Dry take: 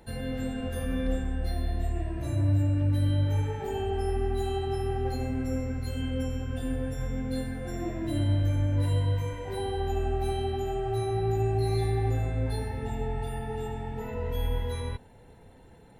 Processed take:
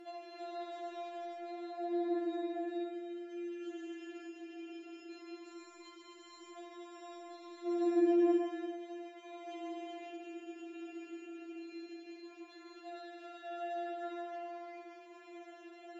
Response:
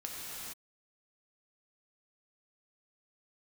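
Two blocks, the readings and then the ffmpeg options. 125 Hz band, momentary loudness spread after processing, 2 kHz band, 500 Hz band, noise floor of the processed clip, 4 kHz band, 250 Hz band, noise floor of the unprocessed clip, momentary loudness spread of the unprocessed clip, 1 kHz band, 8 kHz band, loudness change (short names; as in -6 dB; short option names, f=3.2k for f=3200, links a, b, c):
under -40 dB, 18 LU, -9.0 dB, -7.5 dB, -56 dBFS, -12.0 dB, -4.0 dB, -53 dBFS, 8 LU, -8.5 dB, under -15 dB, -9.5 dB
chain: -filter_complex "[0:a]acompressor=threshold=-38dB:ratio=6,equalizer=f=1k:w=3.7:g=-10.5,tremolo=f=56:d=0.462,highpass=f=290:w=0.5412,highpass=f=290:w=1.3066,highshelf=f=4.8k:g=-8,aresample=16000,aresample=44100[a];[1:a]atrim=start_sample=2205,afade=t=out:st=0.41:d=0.01,atrim=end_sample=18522,asetrate=25137,aresample=44100[b];[a][b]afir=irnorm=-1:irlink=0,afftfilt=real='re*4*eq(mod(b,16),0)':imag='im*4*eq(mod(b,16),0)':win_size=2048:overlap=0.75,volume=9dB"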